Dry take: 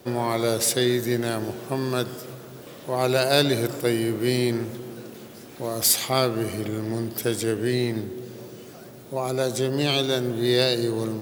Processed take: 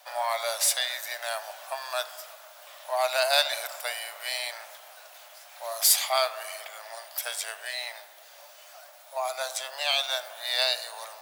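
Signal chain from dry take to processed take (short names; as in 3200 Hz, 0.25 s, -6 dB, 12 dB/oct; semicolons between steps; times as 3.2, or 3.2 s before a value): Chebyshev high-pass 610 Hz, order 6; on a send: reverb RT60 0.60 s, pre-delay 7 ms, DRR 15 dB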